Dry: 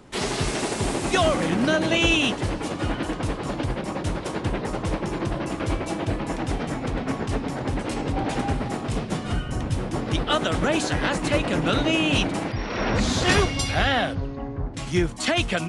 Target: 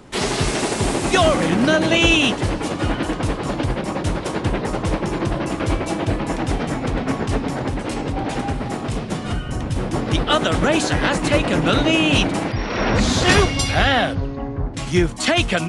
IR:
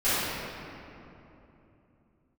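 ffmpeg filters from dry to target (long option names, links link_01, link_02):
-filter_complex "[0:a]asettb=1/sr,asplit=3[link_01][link_02][link_03];[link_01]atrim=end=7.674[link_04];[link_02]atrim=start=7.67:end=9.76,asetpts=PTS-STARTPTS,afade=type=in:duration=0.004:curve=qsin,afade=type=out:start_time=2.086:duration=0.004:curve=qsin,acompressor=threshold=-27dB:ratio=2[link_05];[link_03]atrim=start=9.756[link_06];[link_04][link_05]acrossfade=duration=0.004:curve1=hsin:curve2=qsin[link_07];[link_07][link_06]acrossfade=duration=0.004:curve1=qsin:curve2=hsin,volume=5dB"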